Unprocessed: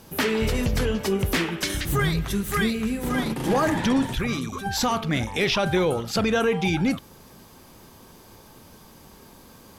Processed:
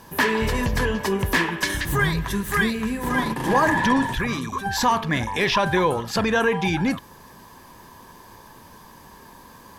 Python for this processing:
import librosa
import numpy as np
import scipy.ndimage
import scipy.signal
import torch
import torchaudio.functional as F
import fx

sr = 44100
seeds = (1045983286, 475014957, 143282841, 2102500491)

y = fx.small_body(x, sr, hz=(1000.0, 1700.0), ring_ms=30, db=15)